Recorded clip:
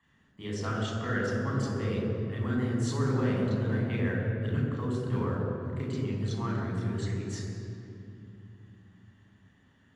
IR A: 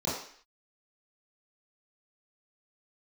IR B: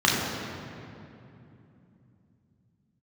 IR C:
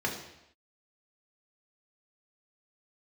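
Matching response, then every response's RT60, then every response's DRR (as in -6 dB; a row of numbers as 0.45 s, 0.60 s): B; 0.55 s, 2.8 s, no single decay rate; -11.0 dB, -5.0 dB, -1.5 dB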